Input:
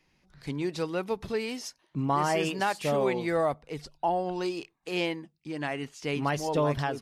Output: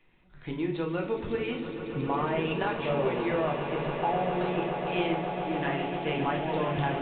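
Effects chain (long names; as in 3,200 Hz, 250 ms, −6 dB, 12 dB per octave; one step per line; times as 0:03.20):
downward compressor, threshold −29 dBFS, peak gain reduction 7.5 dB
echo that builds up and dies away 138 ms, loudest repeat 8, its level −12.5 dB
convolution reverb RT60 0.50 s, pre-delay 8 ms, DRR 0.5 dB
mu-law 64 kbit/s 8,000 Hz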